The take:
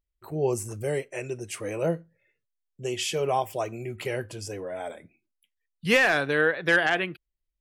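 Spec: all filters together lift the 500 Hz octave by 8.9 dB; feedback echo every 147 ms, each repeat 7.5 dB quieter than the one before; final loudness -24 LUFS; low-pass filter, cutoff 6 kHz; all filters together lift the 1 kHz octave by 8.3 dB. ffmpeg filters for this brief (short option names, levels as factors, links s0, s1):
-af "lowpass=6000,equalizer=f=500:t=o:g=8.5,equalizer=f=1000:t=o:g=8,aecho=1:1:147|294|441|588|735:0.422|0.177|0.0744|0.0312|0.0131,volume=0.668"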